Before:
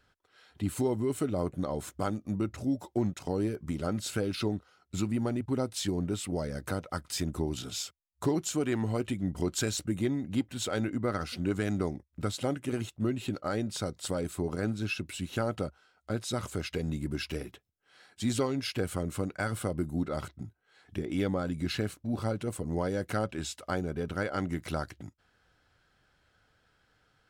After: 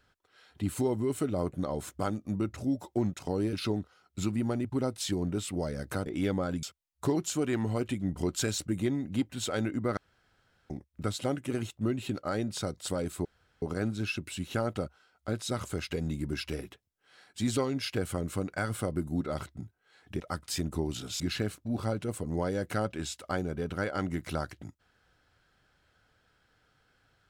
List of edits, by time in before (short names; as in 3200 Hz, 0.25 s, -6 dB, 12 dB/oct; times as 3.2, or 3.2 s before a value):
3.53–4.29 cut
6.82–7.82 swap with 21.02–21.59
11.16–11.89 room tone
14.44 insert room tone 0.37 s